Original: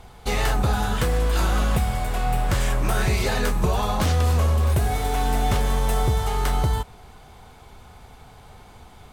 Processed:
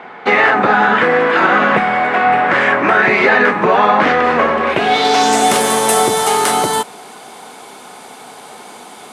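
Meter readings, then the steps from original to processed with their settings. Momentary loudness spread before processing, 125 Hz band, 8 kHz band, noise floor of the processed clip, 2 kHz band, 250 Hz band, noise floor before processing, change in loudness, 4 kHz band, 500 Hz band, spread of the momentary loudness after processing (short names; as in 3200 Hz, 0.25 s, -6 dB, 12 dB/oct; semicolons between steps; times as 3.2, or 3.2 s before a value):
5 LU, -8.5 dB, +12.5 dB, -36 dBFS, +18.5 dB, +10.0 dB, -47 dBFS, +11.0 dB, +11.5 dB, +14.0 dB, 4 LU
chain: HPF 230 Hz 24 dB/oct; low-pass sweep 1900 Hz -> 10000 Hz, 4.61–5.53; maximiser +15.5 dB; gain -1 dB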